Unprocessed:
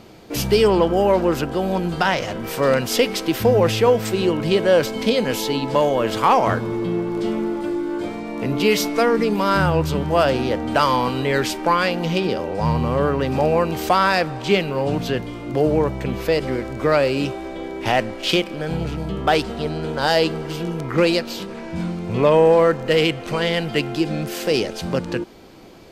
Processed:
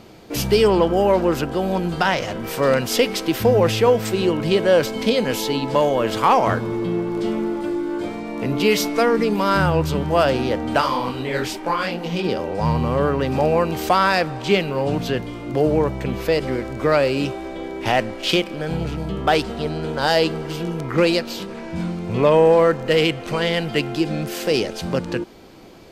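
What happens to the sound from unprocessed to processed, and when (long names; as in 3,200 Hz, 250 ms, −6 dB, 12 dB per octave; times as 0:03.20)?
0:10.80–0:12.23: micro pitch shift up and down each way 59 cents → 47 cents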